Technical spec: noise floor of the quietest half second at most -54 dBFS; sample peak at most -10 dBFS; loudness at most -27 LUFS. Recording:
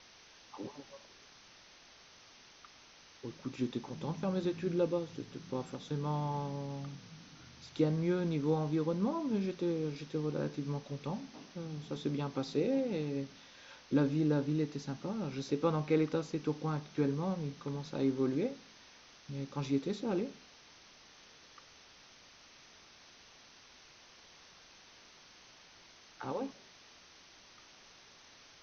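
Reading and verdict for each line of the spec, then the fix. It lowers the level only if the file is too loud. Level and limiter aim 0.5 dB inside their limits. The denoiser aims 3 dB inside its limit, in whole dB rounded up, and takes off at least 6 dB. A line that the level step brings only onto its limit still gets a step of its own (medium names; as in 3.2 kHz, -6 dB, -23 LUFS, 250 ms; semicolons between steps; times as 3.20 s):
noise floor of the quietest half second -59 dBFS: pass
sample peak -17.5 dBFS: pass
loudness -36.0 LUFS: pass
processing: none needed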